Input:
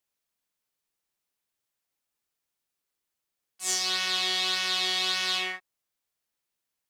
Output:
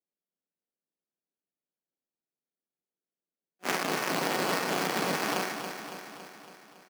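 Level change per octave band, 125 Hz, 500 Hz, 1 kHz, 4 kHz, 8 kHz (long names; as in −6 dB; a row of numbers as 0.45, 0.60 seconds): can't be measured, +10.5 dB, +5.5 dB, −11.0 dB, −5.5 dB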